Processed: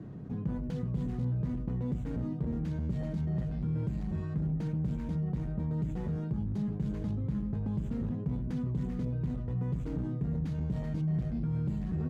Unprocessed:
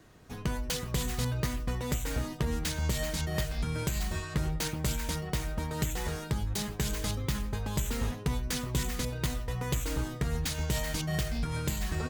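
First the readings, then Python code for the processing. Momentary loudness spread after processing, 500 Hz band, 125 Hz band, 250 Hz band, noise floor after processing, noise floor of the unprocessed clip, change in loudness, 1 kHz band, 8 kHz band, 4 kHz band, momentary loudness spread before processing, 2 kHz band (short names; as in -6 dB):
2 LU, -6.0 dB, +1.5 dB, +3.5 dB, -36 dBFS, -41 dBFS, -1.0 dB, -12.0 dB, under -30 dB, under -20 dB, 3 LU, under -15 dB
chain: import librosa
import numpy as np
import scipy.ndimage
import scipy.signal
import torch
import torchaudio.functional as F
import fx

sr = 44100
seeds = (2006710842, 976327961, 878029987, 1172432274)

y = np.clip(x, -10.0 ** (-30.0 / 20.0), 10.0 ** (-30.0 / 20.0))
y = fx.bandpass_q(y, sr, hz=170.0, q=1.8)
y = fx.env_flatten(y, sr, amount_pct=50)
y = y * 10.0 ** (5.0 / 20.0)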